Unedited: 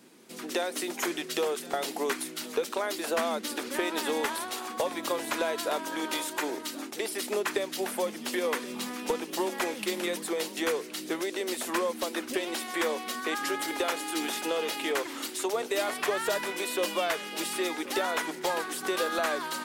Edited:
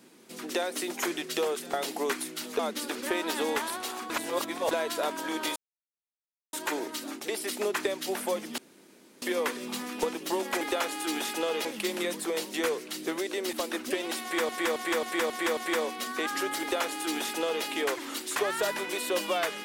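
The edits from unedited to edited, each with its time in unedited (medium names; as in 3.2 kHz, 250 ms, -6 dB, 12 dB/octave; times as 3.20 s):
2.59–3.27 s: delete
4.78–5.39 s: reverse
6.24 s: insert silence 0.97 s
8.29 s: insert room tone 0.64 s
11.56–11.96 s: delete
12.65–12.92 s: loop, 6 plays
13.69–14.73 s: copy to 9.68 s
15.44–16.03 s: delete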